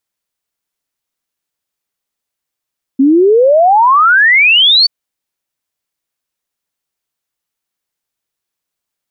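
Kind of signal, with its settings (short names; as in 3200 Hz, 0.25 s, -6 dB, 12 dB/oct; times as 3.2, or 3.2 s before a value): log sweep 260 Hz -> 4600 Hz 1.88 s -4.5 dBFS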